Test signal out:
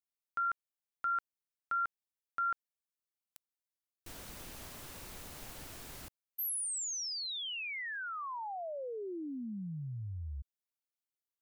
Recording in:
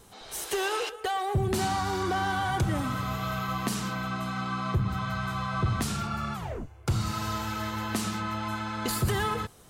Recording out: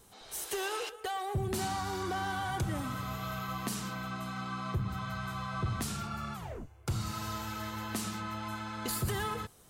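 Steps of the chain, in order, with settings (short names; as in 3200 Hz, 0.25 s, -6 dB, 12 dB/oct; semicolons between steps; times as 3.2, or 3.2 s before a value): high shelf 7700 Hz +6 dB; gain -6.5 dB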